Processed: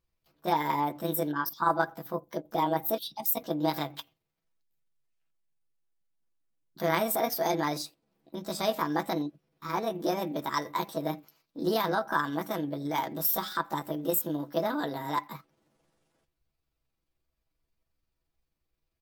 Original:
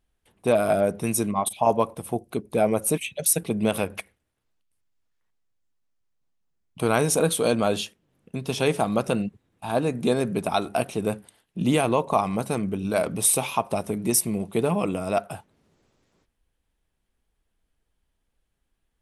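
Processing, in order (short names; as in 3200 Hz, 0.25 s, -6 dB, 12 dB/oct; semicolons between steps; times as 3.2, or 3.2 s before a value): delay-line pitch shifter +6.5 st; comb 6.1 ms, depth 44%; gain -6 dB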